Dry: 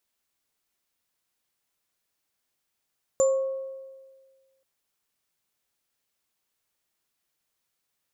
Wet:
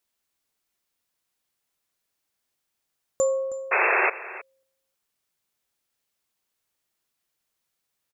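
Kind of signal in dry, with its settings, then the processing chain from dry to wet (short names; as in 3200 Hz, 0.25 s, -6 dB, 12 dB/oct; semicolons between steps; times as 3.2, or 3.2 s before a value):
sine partials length 1.43 s, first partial 534 Hz, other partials 1100/7170 Hz, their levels -17/-7 dB, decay 1.60 s, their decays 1.05/0.27 s, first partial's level -16.5 dB
painted sound noise, 3.71–4.1, 340–2700 Hz -21 dBFS; echo 0.317 s -16.5 dB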